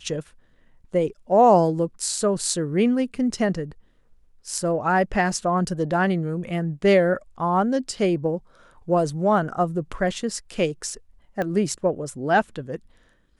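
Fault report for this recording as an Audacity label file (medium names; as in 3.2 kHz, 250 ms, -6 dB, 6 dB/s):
11.420000	11.420000	pop -15 dBFS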